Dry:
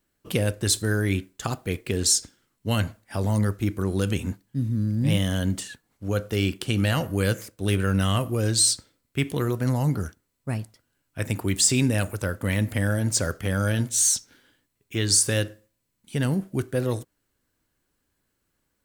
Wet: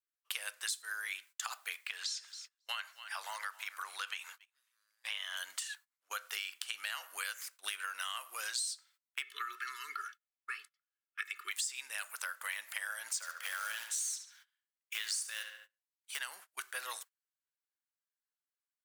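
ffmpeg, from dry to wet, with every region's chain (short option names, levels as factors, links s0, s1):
-filter_complex "[0:a]asettb=1/sr,asplit=3[s0][s1][s2];[s0]atrim=end=1.764[s3];[s1]atrim=start=1.76:end=5.37,asetpts=PTS-STARTPTS,afade=t=in:d=0.004:c=qsin,afade=t=out:st=3.606:d=0.004:c=qsin,acrossover=split=4700[s4][s5];[s5]acompressor=threshold=0.00282:ratio=4:attack=1:release=60[s6];[s4][s6]amix=inputs=2:normalize=0,highpass=590,aecho=1:1:273|546|819:0.112|0.0348|0.0108,atrim=end_sample=159201[s7];[s2]atrim=start=5.366[s8];[s3][s7]acrossfade=d=0.004:c1=hsin:c2=qsin[s9];[s9][s8]acrossfade=d=0.004:c1=qsin:c2=hsin,asettb=1/sr,asplit=3[s10][s11][s12];[s10]atrim=end=9.224[s13];[s11]atrim=start=9.22:end=11.51,asetpts=PTS-STARTPTS,afade=t=in:d=0.004:c=qsin,afade=t=out:st=2.286:d=0.004:c=qsin,asuperstop=centerf=680:order=20:qfactor=1.1,acrossover=split=170 3700:gain=0.0891 1 0.178[s14][s15][s16];[s14][s15][s16]amix=inputs=3:normalize=0,aecho=1:1:2.3:0.9,atrim=end_sample=100989[s17];[s12]atrim=start=11.506[s18];[s13][s17]acrossfade=d=0.004:c1=hsin:c2=qsin[s19];[s19][s18]acrossfade=d=0.004:c1=qsin:c2=hsin,asettb=1/sr,asplit=3[s20][s21][s22];[s20]atrim=end=13.154[s23];[s21]atrim=start=13.15:end=16.19,asetpts=PTS-STARTPTS,afade=t=in:d=0.004:c=qsin,afade=t=out:st=3.036:d=0.004:c=qsin,acrusher=bits=4:mode=log:mix=0:aa=0.000001,asplit=2[s24][s25];[s25]adelay=71,lowpass=f=3900:p=1,volume=0.398,asplit=2[s26][s27];[s27]adelay=71,lowpass=f=3900:p=1,volume=0.41,asplit=2[s28][s29];[s29]adelay=71,lowpass=f=3900:p=1,volume=0.41,asplit=2[s30][s31];[s31]adelay=71,lowpass=f=3900:p=1,volume=0.41,asplit=2[s32][s33];[s33]adelay=71,lowpass=f=3900:p=1,volume=0.41[s34];[s24][s26][s28][s30][s32][s34]amix=inputs=6:normalize=0,atrim=end_sample=134064[s35];[s22]atrim=start=16.186[s36];[s23][s35]acrossfade=d=0.004:c1=hsin:c2=qsin[s37];[s37][s36]acrossfade=d=0.004:c1=qsin:c2=hsin,highpass=f=1100:w=0.5412,highpass=f=1100:w=1.3066,agate=range=0.0631:threshold=0.00251:ratio=16:detection=peak,acompressor=threshold=0.0112:ratio=6,volume=1.33"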